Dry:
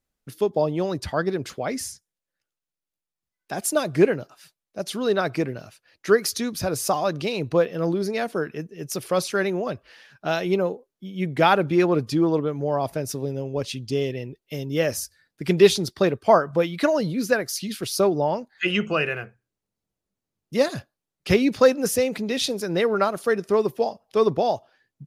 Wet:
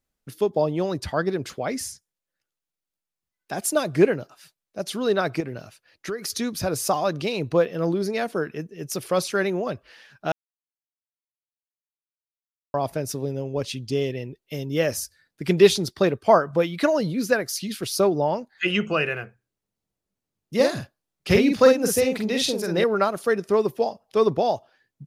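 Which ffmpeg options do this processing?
-filter_complex "[0:a]asettb=1/sr,asplit=3[a][b][c];[a]atrim=end=5.404[d];[b]atrim=start=5.4:end=6.3,asetpts=PTS-STARTPTS,afade=t=in:d=0.004:c=qsin,afade=t=out:st=0.896:d=0.004:c=qsin,acompressor=threshold=-26dB:ratio=6:attack=3.2:release=140:knee=1:detection=peak[e];[c]atrim=start=6.296[f];[d][e]acrossfade=d=0.004:c1=hsin:c2=qsin[g];[g][f]acrossfade=d=0.004:c1=qsin:c2=hsin,asettb=1/sr,asplit=3[h][i][j];[h]atrim=end=20.554[k];[i]atrim=start=20.55:end=22.84,asetpts=PTS-STARTPTS,afade=t=in:d=0.004:c=qsin,afade=t=out:st=2.286:d=0.004:c=qsin,asplit=2[l][m];[m]adelay=46,volume=-4dB[n];[l][n]amix=inputs=2:normalize=0,atrim=end_sample=100989[o];[j]atrim=start=22.836[p];[k][o]acrossfade=d=0.004:c1=hsin:c2=qsin[q];[q][p]acrossfade=d=0.004:c1=qsin:c2=hsin,asplit=3[r][s][t];[r]atrim=end=10.32,asetpts=PTS-STARTPTS,afade=t=out:st=10.316:d=0.004:c=hsin[u];[s]atrim=start=10.32:end=12.74,asetpts=PTS-STARTPTS,volume=0[v];[t]atrim=start=12.74,asetpts=PTS-STARTPTS,afade=t=in:d=0.004:c=hsin[w];[u][v][w]concat=n=3:v=0:a=1"

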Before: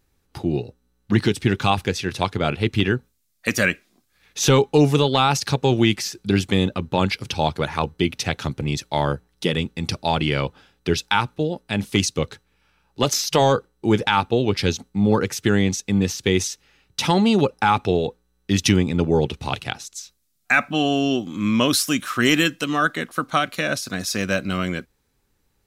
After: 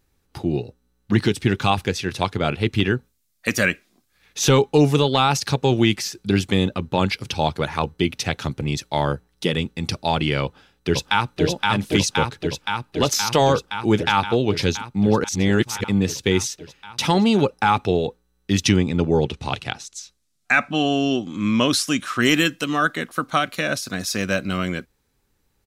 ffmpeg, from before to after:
-filter_complex "[0:a]asplit=2[a][b];[b]afade=t=in:st=10.43:d=0.01,afade=t=out:st=11.43:d=0.01,aecho=0:1:520|1040|1560|2080|2600|3120|3640|4160|4680|5200|5720|6240:0.841395|0.673116|0.538493|0.430794|0.344635|0.275708|0.220567|0.176453|0.141163|0.11293|0.0903441|0.0722753[c];[a][c]amix=inputs=2:normalize=0,asettb=1/sr,asplit=3[d][e][f];[d]atrim=end=18.644[g];[e]atrim=start=18.64:end=22.22,asetpts=PTS-STARTPTS,afade=t=in:d=0.004:c=qsin,afade=t=out:st=3.576:d=0.004:c=qsin,lowpass=9.2k[h];[f]atrim=start=22.216[i];[g][h]acrossfade=d=0.004:c1=hsin:c2=qsin[j];[j][i]acrossfade=d=0.004:c1=qsin:c2=hsin,asplit=3[k][l][m];[k]atrim=end=15.242[n];[l]atrim=start=15.238:end=15.842,asetpts=PTS-STARTPTS,areverse[o];[m]atrim=start=15.838[p];[n][o]acrossfade=d=0.004:c1=hsin:c2=hsin[q];[q][p]acrossfade=d=0.004:c1=hsin:c2=hsin"

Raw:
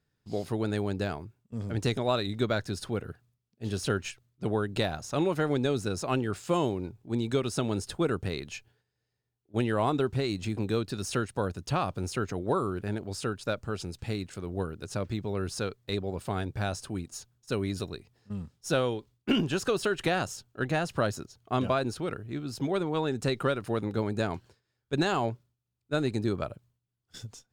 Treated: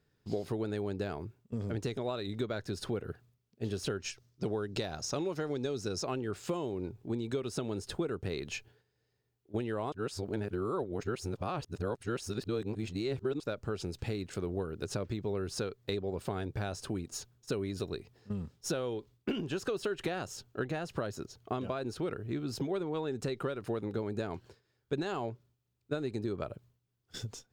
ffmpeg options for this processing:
-filter_complex "[0:a]asettb=1/sr,asplit=3[a][b][c];[a]atrim=end=4.004[d];[b]atrim=start=4:end=6.05,asetpts=PTS-STARTPTS,afade=t=in:d=0.004:c=qsin,afade=t=out:st=2.046:d=0.004:c=qsin,equalizer=f=5.5k:w=2:g=10.5[e];[c]atrim=start=6.046[f];[d][e]acrossfade=d=0.004:c1=hsin:c2=qsin[g];[g][f]acrossfade=d=0.004:c1=qsin:c2=hsin,asplit=3[h][i][j];[h]atrim=end=9.922[k];[i]atrim=start=9.918:end=13.402,asetpts=PTS-STARTPTS,areverse[l];[j]atrim=start=13.398[m];[k][l]acrossfade=d=0.004:c1=hsin:c2=hsin[n];[n][m]acrossfade=d=0.004:c1=hsin:c2=hsin,equalizer=f=9.8k:t=o:w=0.86:g=-4,acompressor=threshold=-36dB:ratio=12,equalizer=f=410:t=o:w=0.72:g=5,volume=3dB"

